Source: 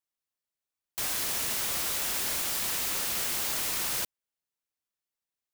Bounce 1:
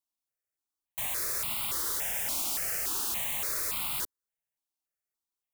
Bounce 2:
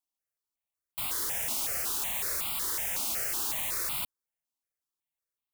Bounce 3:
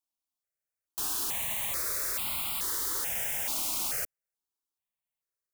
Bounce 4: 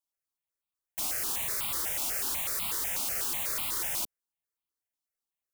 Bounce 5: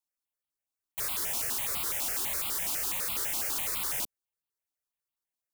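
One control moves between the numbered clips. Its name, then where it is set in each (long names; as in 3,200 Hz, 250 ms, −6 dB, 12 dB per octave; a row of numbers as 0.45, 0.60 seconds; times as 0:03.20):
step-sequenced phaser, speed: 3.5, 5.4, 2.3, 8.1, 12 Hertz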